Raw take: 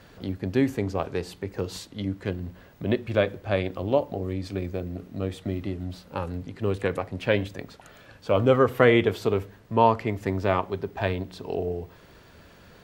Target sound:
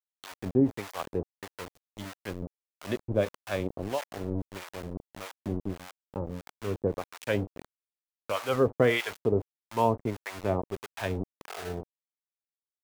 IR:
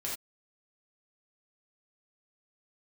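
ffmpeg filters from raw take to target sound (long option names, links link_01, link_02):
-filter_complex "[0:a]afftdn=noise_reduction=35:noise_floor=-44,aeval=exprs='val(0)*gte(abs(val(0)),0.0316)':channel_layout=same,acrossover=split=760[link_01][link_02];[link_01]aeval=exprs='val(0)*(1-1/2+1/2*cos(2*PI*1.6*n/s))':channel_layout=same[link_03];[link_02]aeval=exprs='val(0)*(1-1/2-1/2*cos(2*PI*1.6*n/s))':channel_layout=same[link_04];[link_03][link_04]amix=inputs=2:normalize=0"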